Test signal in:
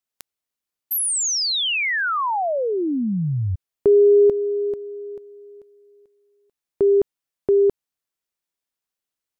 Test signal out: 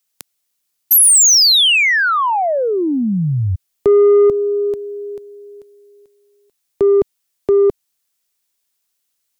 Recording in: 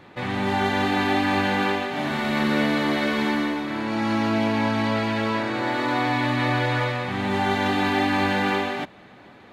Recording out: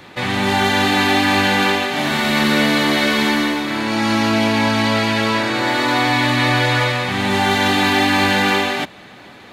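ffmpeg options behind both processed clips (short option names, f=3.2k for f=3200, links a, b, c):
-filter_complex "[0:a]highshelf=f=2.8k:g=11.5,acrossover=split=190[a][b];[b]asoftclip=type=tanh:threshold=-11.5dB[c];[a][c]amix=inputs=2:normalize=0,volume=5.5dB"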